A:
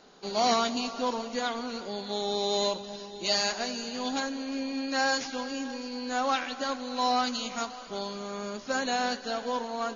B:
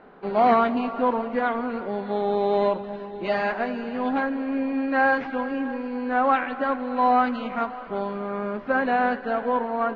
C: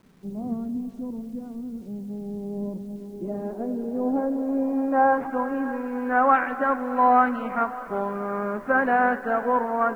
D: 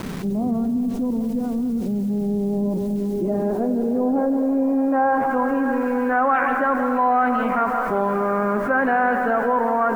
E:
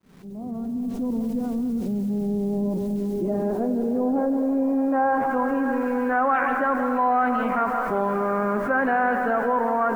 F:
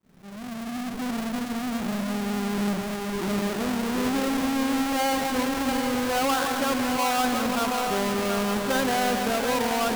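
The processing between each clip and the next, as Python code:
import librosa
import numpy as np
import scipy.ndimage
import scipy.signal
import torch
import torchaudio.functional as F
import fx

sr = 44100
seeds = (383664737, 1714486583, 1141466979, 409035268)

y1 = scipy.signal.sosfilt(scipy.signal.butter(4, 2100.0, 'lowpass', fs=sr, output='sos'), x)
y1 = F.gain(torch.from_numpy(y1), 7.5).numpy()
y2 = fx.filter_sweep_lowpass(y1, sr, from_hz=170.0, to_hz=1600.0, start_s=2.41, end_s=5.92, q=1.4)
y2 = fx.quant_dither(y2, sr, seeds[0], bits=10, dither='none')
y3 = y2 + 10.0 ** (-12.0 / 20.0) * np.pad(y2, (int(167 * sr / 1000.0), 0))[:len(y2)]
y3 = fx.env_flatten(y3, sr, amount_pct=70)
y3 = F.gain(torch.from_numpy(y3), -2.0).numpy()
y4 = fx.fade_in_head(y3, sr, length_s=1.16)
y4 = F.gain(torch.from_numpy(y4), -2.5).numpy()
y5 = fx.halfwave_hold(y4, sr)
y5 = y5 + 10.0 ** (-7.0 / 20.0) * np.pad(y5, (int(729 * sr / 1000.0), 0))[:len(y5)]
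y5 = F.gain(torch.from_numpy(y5), -7.0).numpy()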